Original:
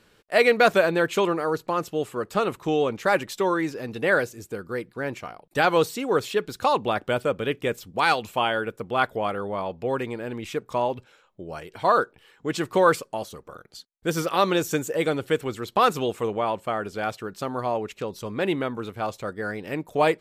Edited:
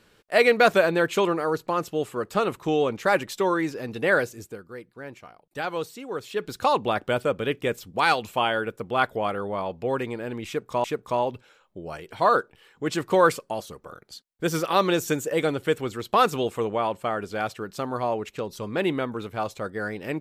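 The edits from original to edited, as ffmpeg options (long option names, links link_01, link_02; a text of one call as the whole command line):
ffmpeg -i in.wav -filter_complex "[0:a]asplit=4[link_01][link_02][link_03][link_04];[link_01]atrim=end=4.7,asetpts=PTS-STARTPTS,afade=type=out:start_time=4.42:duration=0.28:curve=qua:silence=0.334965[link_05];[link_02]atrim=start=4.7:end=6.19,asetpts=PTS-STARTPTS,volume=-9.5dB[link_06];[link_03]atrim=start=6.19:end=10.842,asetpts=PTS-STARTPTS,afade=type=in:duration=0.28:curve=qua:silence=0.334965[link_07];[link_04]atrim=start=10.468[link_08];[link_05][link_06][link_07]concat=n=3:v=0:a=1[link_09];[link_09][link_08]acrossfade=duration=0.004:curve1=hsin:curve2=hsin" out.wav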